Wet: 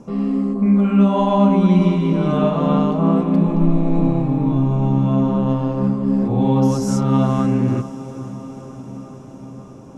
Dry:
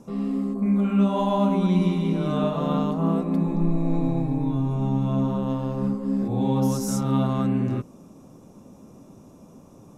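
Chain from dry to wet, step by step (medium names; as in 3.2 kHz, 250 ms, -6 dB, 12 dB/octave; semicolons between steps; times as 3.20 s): distance through air 66 m; band-stop 3.7 kHz, Q 10; on a send: echo that smears into a reverb 491 ms, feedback 70%, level -15 dB; on the sum: trim +6.5 dB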